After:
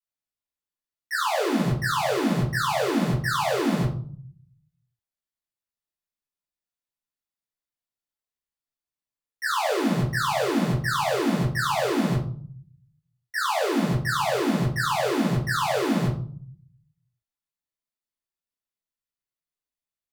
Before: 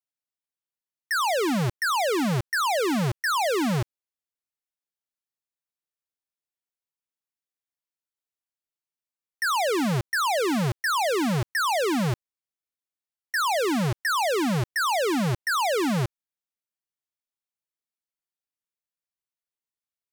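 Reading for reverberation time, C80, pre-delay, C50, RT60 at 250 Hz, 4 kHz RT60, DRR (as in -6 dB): 0.50 s, 11.5 dB, 5 ms, 7.0 dB, 0.80 s, 0.35 s, -11.5 dB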